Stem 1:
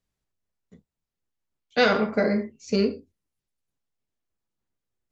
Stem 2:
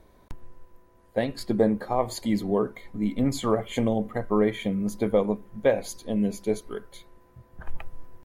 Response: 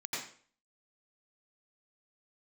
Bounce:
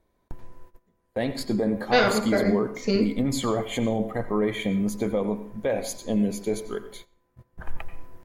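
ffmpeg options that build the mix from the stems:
-filter_complex "[0:a]adelay=150,volume=-1dB,asplit=2[a][b];[b]volume=-17.5dB[c];[1:a]alimiter=limit=-19dB:level=0:latency=1:release=32,volume=2.5dB,asplit=2[d][e];[e]volume=-13.5dB[f];[2:a]atrim=start_sample=2205[g];[c][f]amix=inputs=2:normalize=0[h];[h][g]afir=irnorm=-1:irlink=0[i];[a][d][i]amix=inputs=3:normalize=0,agate=range=-16dB:threshold=-43dB:ratio=16:detection=peak"

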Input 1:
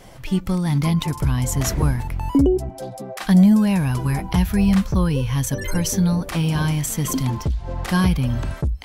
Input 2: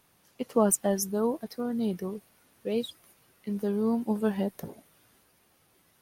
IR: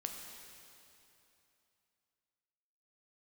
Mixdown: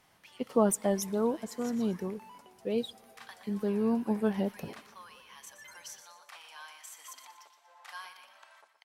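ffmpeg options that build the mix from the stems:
-filter_complex "[0:a]highpass=f=820:w=0.5412,highpass=f=820:w=1.3066,volume=-19dB,asplit=3[a][b][c];[b]volume=-10.5dB[d];[c]volume=-9dB[e];[1:a]volume=-2dB,asplit=3[f][g][h];[g]volume=-21.5dB[i];[h]apad=whole_len=389951[j];[a][j]sidechaincompress=threshold=-33dB:ratio=8:attack=16:release=161[k];[2:a]atrim=start_sample=2205[l];[d][i]amix=inputs=2:normalize=0[m];[m][l]afir=irnorm=-1:irlink=0[n];[e]aecho=0:1:120|240|360|480|600:1|0.36|0.13|0.0467|0.0168[o];[k][f][n][o]amix=inputs=4:normalize=0,highshelf=f=7.4k:g=-7.5"

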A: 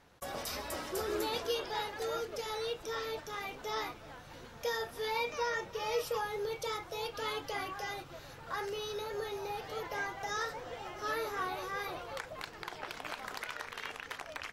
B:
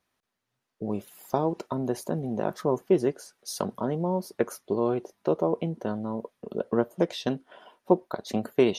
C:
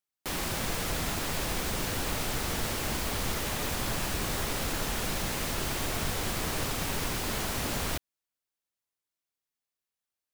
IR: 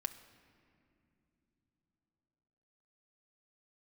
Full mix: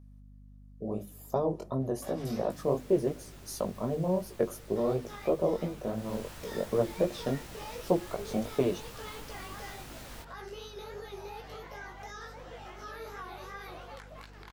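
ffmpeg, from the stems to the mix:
-filter_complex "[0:a]alimiter=level_in=8dB:limit=-24dB:level=0:latency=1:release=170,volume=-8dB,adelay=1800,volume=0dB,asplit=3[a][b][c];[a]atrim=end=2.51,asetpts=PTS-STARTPTS,afade=t=out:st=2.506:d=0.004:c=hsin[d];[b]atrim=start=2.51:end=4.76,asetpts=PTS-STARTPTS,volume=0[e];[c]atrim=start=4.76,asetpts=PTS-STARTPTS,afade=t=in:d=0.004:c=hsin[f];[d][e][f]concat=n=3:v=0:a=1[g];[1:a]equalizer=f=2.4k:w=0.5:g=-10.5,bandreject=f=50:t=h:w=6,bandreject=f=100:t=h:w=6,bandreject=f=150:t=h:w=6,bandreject=f=200:t=h:w=6,bandreject=f=250:t=h:w=6,bandreject=f=300:t=h:w=6,bandreject=f=350:t=h:w=6,aecho=1:1:1.7:0.34,volume=0dB,asplit=3[h][i][j];[i]volume=-10.5dB[k];[2:a]adelay=2250,volume=-12.5dB,afade=t=in:st=5.93:d=0.21:silence=0.446684[l];[j]apad=whole_len=719779[m];[g][m]sidechaincompress=threshold=-30dB:ratio=8:attack=37:release=360[n];[3:a]atrim=start_sample=2205[o];[k][o]afir=irnorm=-1:irlink=0[p];[n][h][l][p]amix=inputs=4:normalize=0,flanger=delay=15:depth=7.2:speed=2.8,aeval=exprs='val(0)+0.00282*(sin(2*PI*50*n/s)+sin(2*PI*2*50*n/s)/2+sin(2*PI*3*50*n/s)/3+sin(2*PI*4*50*n/s)/4+sin(2*PI*5*50*n/s)/5)':c=same"

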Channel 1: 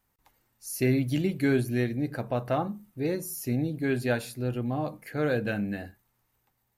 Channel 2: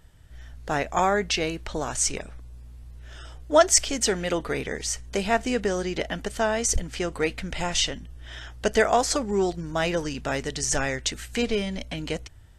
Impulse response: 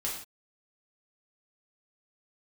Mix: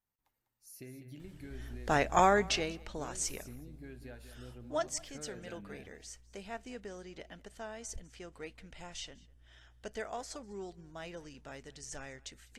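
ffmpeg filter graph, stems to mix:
-filter_complex "[0:a]acompressor=threshold=-30dB:ratio=6,volume=-16.5dB,asplit=2[a][b];[b]volume=-10.5dB[c];[1:a]adelay=1200,volume=-2.5dB,afade=t=out:st=2.26:d=0.48:silence=0.354813,afade=t=out:st=4.45:d=0.45:silence=0.375837,asplit=2[d][e];[e]volume=-23.5dB[f];[c][f]amix=inputs=2:normalize=0,aecho=0:1:199:1[g];[a][d][g]amix=inputs=3:normalize=0"

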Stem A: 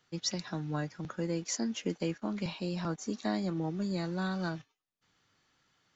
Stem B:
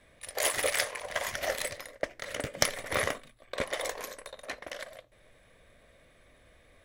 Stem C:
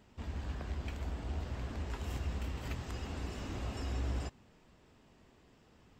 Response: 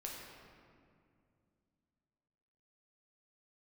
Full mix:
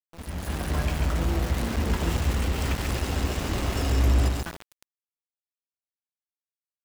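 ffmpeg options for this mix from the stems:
-filter_complex "[0:a]lowpass=f=1.7k:w=0.5412,lowpass=f=1.7k:w=1.3066,equalizer=f=380:w=0.48:g=-10.5,volume=1.5dB,asplit=3[a][b][c];[a]atrim=end=2.19,asetpts=PTS-STARTPTS,afade=t=out:st=2.186:d=0.004:c=hsin[d];[b]atrim=start=2.19:end=4.46,asetpts=PTS-STARTPTS,volume=0[e];[c]atrim=start=4.46,asetpts=PTS-STARTPTS,afade=t=in:d=0.004:c=hsin[f];[d][e][f]concat=n=3:v=0:a=1,asplit=3[g][h][i];[h]volume=-4dB[j];[i]volume=-13dB[k];[1:a]acompressor=threshold=-35dB:ratio=6,volume=-10dB[l];[2:a]volume=3dB,asplit=2[m][n];[n]volume=-4dB[o];[g][l]amix=inputs=2:normalize=0,highshelf=f=5.8k:g=9.5,acompressor=threshold=-51dB:ratio=3,volume=0dB[p];[3:a]atrim=start_sample=2205[q];[j][q]afir=irnorm=-1:irlink=0[r];[k][o]amix=inputs=2:normalize=0,aecho=0:1:139|278|417|556:1|0.27|0.0729|0.0197[s];[m][p][r][s]amix=inputs=4:normalize=0,aeval=exprs='val(0)*gte(abs(val(0)),0.0119)':c=same,dynaudnorm=f=190:g=5:m=8.5dB"

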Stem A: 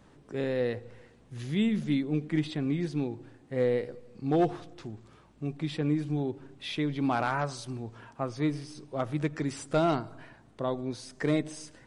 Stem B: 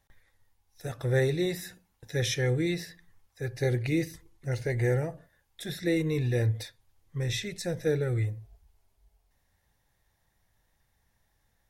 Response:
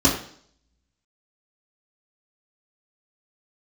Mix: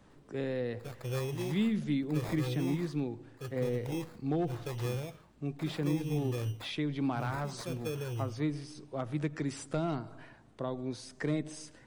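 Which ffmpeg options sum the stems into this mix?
-filter_complex "[0:a]volume=-2.5dB[a];[1:a]agate=range=-33dB:threshold=-57dB:ratio=3:detection=peak,acrusher=samples=15:mix=1:aa=0.000001,volume=-8.5dB[b];[a][b]amix=inputs=2:normalize=0,acrossover=split=270[c][d];[d]acompressor=threshold=-34dB:ratio=4[e];[c][e]amix=inputs=2:normalize=0"

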